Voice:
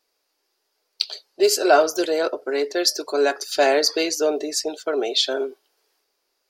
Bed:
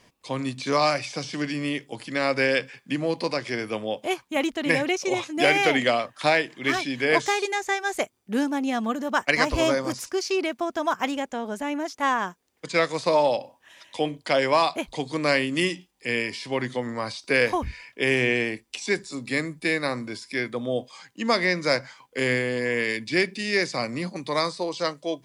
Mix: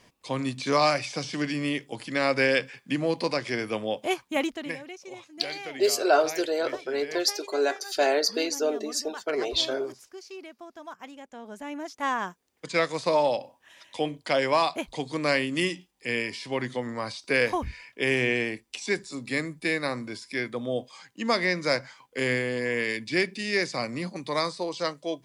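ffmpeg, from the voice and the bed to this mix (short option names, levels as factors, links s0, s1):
-filter_complex "[0:a]adelay=4400,volume=0.531[s0];[1:a]volume=5.01,afade=t=out:st=4.32:d=0.45:silence=0.149624,afade=t=in:st=11.17:d=1.21:silence=0.188365[s1];[s0][s1]amix=inputs=2:normalize=0"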